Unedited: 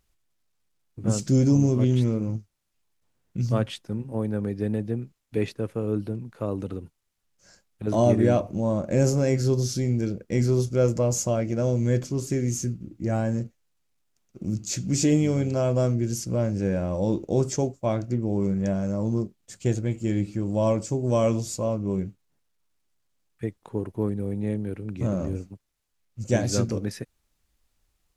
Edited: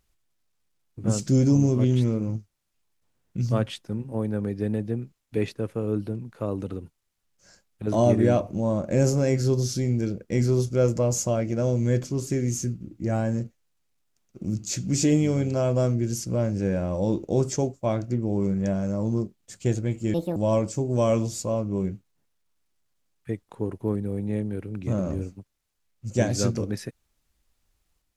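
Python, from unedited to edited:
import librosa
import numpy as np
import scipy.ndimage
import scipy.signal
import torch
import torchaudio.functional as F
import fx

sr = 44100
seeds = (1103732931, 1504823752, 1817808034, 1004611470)

y = fx.edit(x, sr, fx.speed_span(start_s=20.14, length_s=0.36, speed=1.63), tone=tone)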